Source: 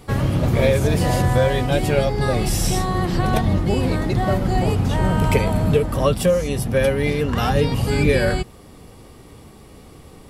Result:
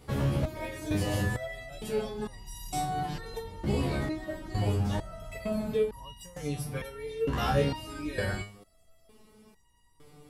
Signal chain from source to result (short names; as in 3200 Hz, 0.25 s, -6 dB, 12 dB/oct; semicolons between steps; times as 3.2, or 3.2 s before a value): stepped resonator 2.2 Hz 70–960 Hz